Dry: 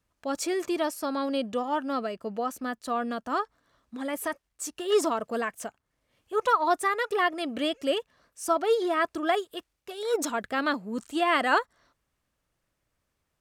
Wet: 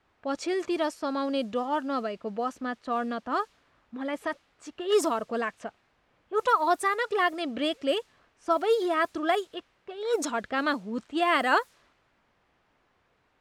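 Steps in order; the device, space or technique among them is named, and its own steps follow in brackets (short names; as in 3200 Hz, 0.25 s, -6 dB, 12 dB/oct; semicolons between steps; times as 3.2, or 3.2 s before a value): cassette deck with a dynamic noise filter (white noise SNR 30 dB; low-pass opened by the level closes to 1600 Hz, open at -21 dBFS)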